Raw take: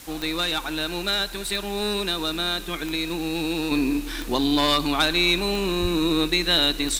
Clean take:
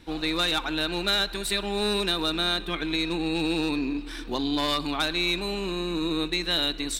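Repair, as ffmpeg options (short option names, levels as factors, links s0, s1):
-filter_complex "[0:a]adeclick=t=4,asplit=3[s0][s1][s2];[s0]afade=t=out:st=5.81:d=0.02[s3];[s1]highpass=f=140:w=0.5412,highpass=f=140:w=1.3066,afade=t=in:st=5.81:d=0.02,afade=t=out:st=5.93:d=0.02[s4];[s2]afade=t=in:st=5.93:d=0.02[s5];[s3][s4][s5]amix=inputs=3:normalize=0,afwtdn=0.0071,asetnsamples=n=441:p=0,asendcmd='3.71 volume volume -5.5dB',volume=1"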